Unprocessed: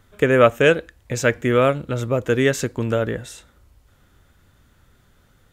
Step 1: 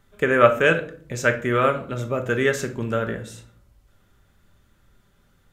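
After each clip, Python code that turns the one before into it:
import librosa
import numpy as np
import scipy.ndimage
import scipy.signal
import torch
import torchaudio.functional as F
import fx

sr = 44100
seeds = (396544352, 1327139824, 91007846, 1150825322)

y = fx.dynamic_eq(x, sr, hz=1400.0, q=1.3, threshold_db=-33.0, ratio=4.0, max_db=7)
y = fx.room_shoebox(y, sr, seeds[0], volume_m3=550.0, walls='furnished', distance_m=1.2)
y = y * librosa.db_to_amplitude(-5.5)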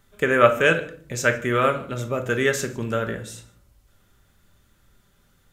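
y = fx.high_shelf(x, sr, hz=3600.0, db=6.5)
y = y + 10.0 ** (-24.0 / 20.0) * np.pad(y, (int(152 * sr / 1000.0), 0))[:len(y)]
y = y * librosa.db_to_amplitude(-1.0)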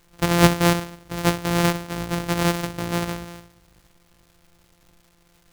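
y = np.r_[np.sort(x[:len(x) // 256 * 256].reshape(-1, 256), axis=1).ravel(), x[len(x) // 256 * 256:]]
y = fx.dmg_crackle(y, sr, seeds[1], per_s=400.0, level_db=-46.0)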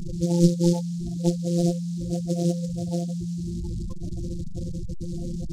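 y = fx.delta_mod(x, sr, bps=16000, step_db=-22.0)
y = fx.spec_gate(y, sr, threshold_db=-10, keep='strong')
y = fx.noise_mod_delay(y, sr, seeds[2], noise_hz=5600.0, depth_ms=0.061)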